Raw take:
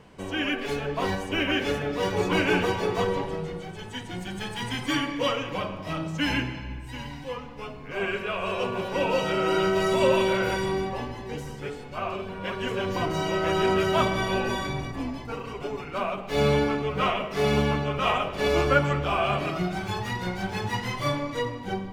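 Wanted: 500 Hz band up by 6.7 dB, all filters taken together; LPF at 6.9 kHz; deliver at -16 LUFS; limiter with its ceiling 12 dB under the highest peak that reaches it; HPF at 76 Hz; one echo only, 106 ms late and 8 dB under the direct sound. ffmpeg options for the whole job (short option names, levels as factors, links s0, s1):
-af "highpass=76,lowpass=6900,equalizer=f=500:t=o:g=8.5,alimiter=limit=0.178:level=0:latency=1,aecho=1:1:106:0.398,volume=2.99"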